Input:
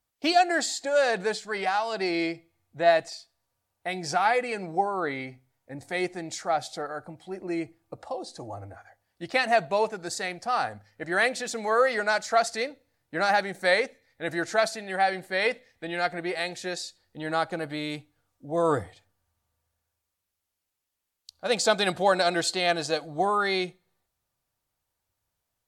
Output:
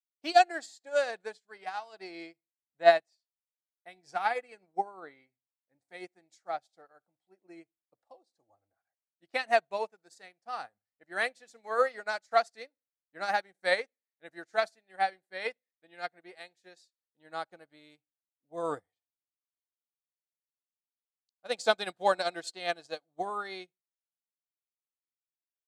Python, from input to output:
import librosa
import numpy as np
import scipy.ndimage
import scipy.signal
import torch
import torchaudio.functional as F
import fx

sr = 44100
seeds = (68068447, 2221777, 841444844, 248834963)

y = fx.highpass(x, sr, hz=250.0, slope=6)
y = fx.upward_expand(y, sr, threshold_db=-42.0, expansion=2.5)
y = F.gain(torch.from_numpy(y), 2.5).numpy()